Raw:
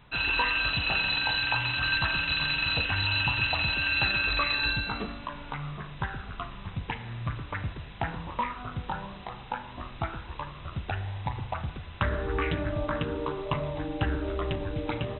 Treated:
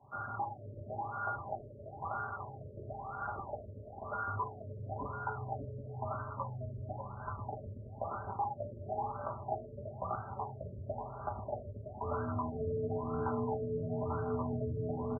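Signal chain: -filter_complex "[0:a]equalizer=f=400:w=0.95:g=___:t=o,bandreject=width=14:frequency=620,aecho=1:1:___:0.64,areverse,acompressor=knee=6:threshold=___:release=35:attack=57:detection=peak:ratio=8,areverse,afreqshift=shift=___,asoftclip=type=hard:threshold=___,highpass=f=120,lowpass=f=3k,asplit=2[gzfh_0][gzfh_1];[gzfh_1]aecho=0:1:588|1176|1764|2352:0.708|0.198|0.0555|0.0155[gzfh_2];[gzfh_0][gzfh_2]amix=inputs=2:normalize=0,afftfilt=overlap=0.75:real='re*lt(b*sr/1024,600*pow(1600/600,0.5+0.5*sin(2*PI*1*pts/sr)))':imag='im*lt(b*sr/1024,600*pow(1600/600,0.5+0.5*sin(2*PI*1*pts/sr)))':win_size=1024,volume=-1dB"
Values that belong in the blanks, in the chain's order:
-5, 5.3, -34dB, -150, -26.5dB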